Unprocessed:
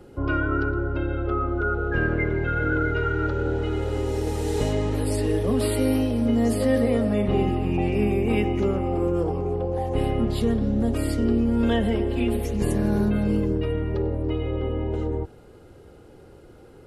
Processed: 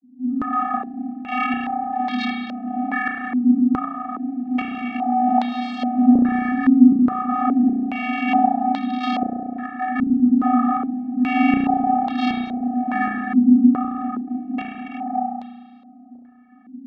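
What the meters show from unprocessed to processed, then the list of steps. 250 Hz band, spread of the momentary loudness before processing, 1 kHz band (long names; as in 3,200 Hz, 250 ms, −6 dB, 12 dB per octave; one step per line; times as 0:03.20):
+7.0 dB, 5 LU, +11.5 dB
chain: automatic gain control gain up to 4.5 dB
wrap-around overflow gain 13.5 dB
pitch vibrato 12 Hz 91 cents
channel vocoder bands 32, square 250 Hz
shaped tremolo saw up 1.3 Hz, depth 85%
spring reverb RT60 1.8 s, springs 33 ms, chirp 75 ms, DRR −2 dB
low-pass on a step sequencer 2.4 Hz 260–3,800 Hz
level +1 dB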